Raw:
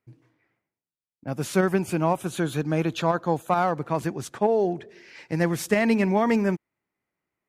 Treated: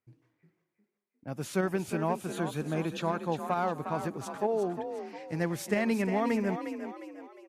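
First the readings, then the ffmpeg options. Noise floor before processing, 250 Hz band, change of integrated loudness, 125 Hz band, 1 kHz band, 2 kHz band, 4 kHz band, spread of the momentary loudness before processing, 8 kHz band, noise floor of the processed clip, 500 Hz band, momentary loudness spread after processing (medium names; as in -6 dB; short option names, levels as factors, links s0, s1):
under -85 dBFS, -7.0 dB, -7.0 dB, -7.5 dB, -6.5 dB, -7.0 dB, -7.0 dB, 11 LU, -7.0 dB, -85 dBFS, -7.0 dB, 11 LU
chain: -filter_complex "[0:a]asplit=6[s0][s1][s2][s3][s4][s5];[s1]adelay=356,afreqshift=42,volume=0.376[s6];[s2]adelay=712,afreqshift=84,volume=0.155[s7];[s3]adelay=1068,afreqshift=126,volume=0.0631[s8];[s4]adelay=1424,afreqshift=168,volume=0.026[s9];[s5]adelay=1780,afreqshift=210,volume=0.0106[s10];[s0][s6][s7][s8][s9][s10]amix=inputs=6:normalize=0,volume=0.422"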